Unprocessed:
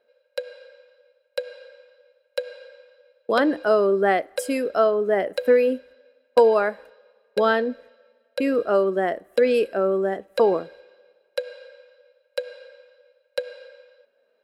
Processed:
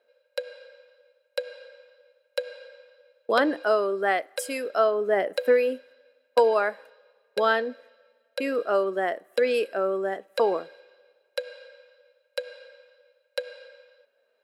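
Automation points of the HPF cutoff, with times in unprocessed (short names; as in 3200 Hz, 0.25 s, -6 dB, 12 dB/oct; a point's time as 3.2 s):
HPF 6 dB/oct
3.45 s 390 Hz
3.87 s 890 Hz
4.58 s 890 Hz
5.36 s 290 Hz
5.61 s 640 Hz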